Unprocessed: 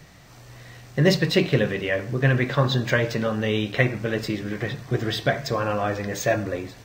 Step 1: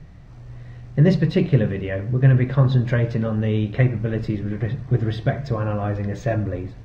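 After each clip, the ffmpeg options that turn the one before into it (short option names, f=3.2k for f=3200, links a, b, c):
-af "aemphasis=mode=reproduction:type=riaa,volume=-4.5dB"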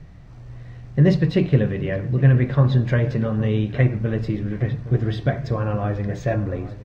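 -filter_complex "[0:a]asplit=2[a][b];[b]adelay=816.3,volume=-15dB,highshelf=f=4k:g=-18.4[c];[a][c]amix=inputs=2:normalize=0"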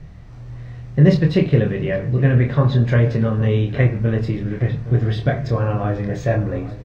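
-filter_complex "[0:a]asplit=2[a][b];[b]adelay=26,volume=-5dB[c];[a][c]amix=inputs=2:normalize=0,volume=2dB"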